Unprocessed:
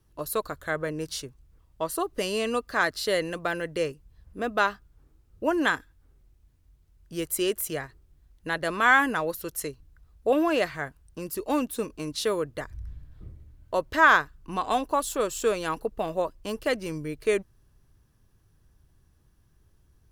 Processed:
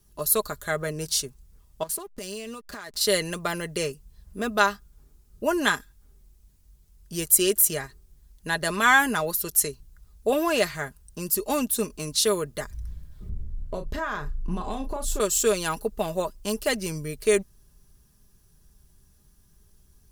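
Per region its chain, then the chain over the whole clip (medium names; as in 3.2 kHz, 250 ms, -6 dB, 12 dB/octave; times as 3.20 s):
1.83–3.01 s: hysteresis with a dead band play -37.5 dBFS + compression 16:1, threshold -35 dBFS
13.29–15.20 s: tilt EQ -3 dB/octave + compression, threshold -29 dBFS + doubling 34 ms -8 dB
whole clip: tone controls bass +3 dB, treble +12 dB; comb 4.9 ms, depth 49%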